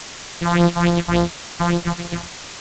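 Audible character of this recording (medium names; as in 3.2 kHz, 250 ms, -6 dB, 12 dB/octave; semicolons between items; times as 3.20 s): a buzz of ramps at a fixed pitch in blocks of 256 samples; phasing stages 4, 3.5 Hz, lowest notch 370–2600 Hz; a quantiser's noise floor 6-bit, dither triangular; G.722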